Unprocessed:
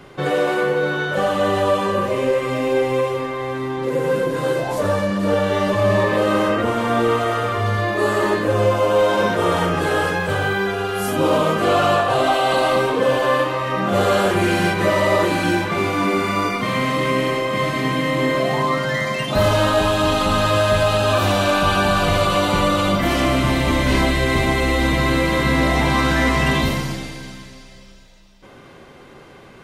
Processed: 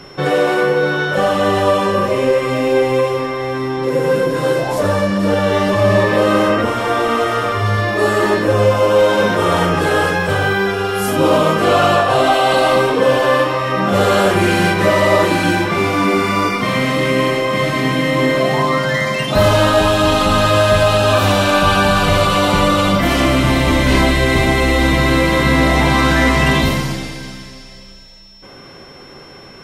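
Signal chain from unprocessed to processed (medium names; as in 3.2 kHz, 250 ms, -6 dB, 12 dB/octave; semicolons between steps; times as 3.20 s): de-hum 116.4 Hz, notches 10; whistle 5.4 kHz -46 dBFS; trim +4.5 dB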